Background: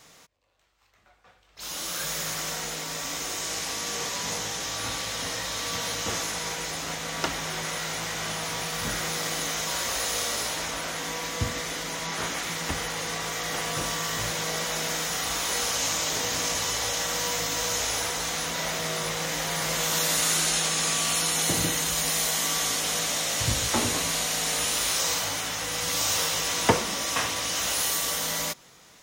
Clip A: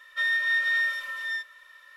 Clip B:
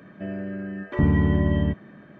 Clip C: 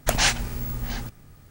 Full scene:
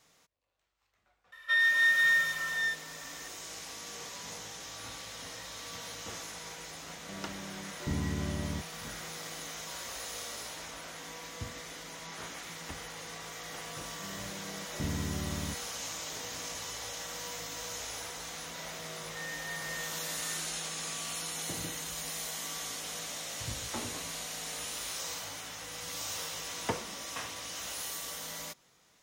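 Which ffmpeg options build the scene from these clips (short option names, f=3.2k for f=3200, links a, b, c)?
-filter_complex "[1:a]asplit=2[a][b];[2:a]asplit=2[c][d];[0:a]volume=-12.5dB[e];[b]lowpass=2.6k[f];[a]atrim=end=1.96,asetpts=PTS-STARTPTS,afade=t=in:d=0.004:c=hsin,afade=t=out:st=1.956:d=0.004:c=hsin,adelay=1320[g];[c]atrim=end=2.19,asetpts=PTS-STARTPTS,volume=-14dB,afade=t=in:d=0.004:c=hsin,afade=t=out:st=2.186:d=0.004:c=hsin,adelay=6880[h];[d]atrim=end=2.19,asetpts=PTS-STARTPTS,volume=-15.5dB,afade=t=in:d=0.004:c=hsin,afade=t=out:st=2.186:d=0.004:c=hsin,adelay=13810[i];[f]atrim=end=1.96,asetpts=PTS-STARTPTS,volume=-16.5dB,afade=t=in:d=0.004:c=hsin,afade=t=out:st=1.956:d=0.004:c=hsin,adelay=18980[j];[e][g][h][i][j]amix=inputs=5:normalize=0"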